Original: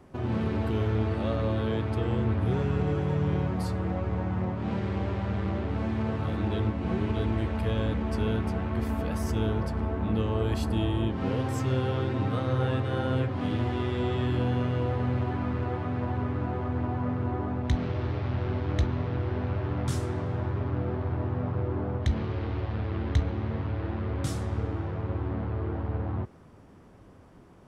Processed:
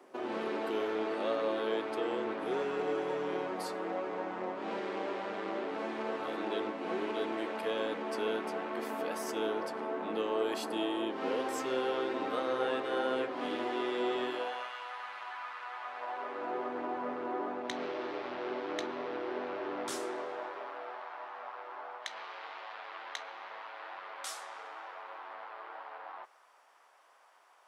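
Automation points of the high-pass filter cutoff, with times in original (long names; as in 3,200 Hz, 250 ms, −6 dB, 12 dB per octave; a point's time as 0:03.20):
high-pass filter 24 dB per octave
0:14.23 330 Hz
0:14.75 950 Hz
0:15.74 950 Hz
0:16.57 340 Hz
0:19.95 340 Hz
0:21.08 760 Hz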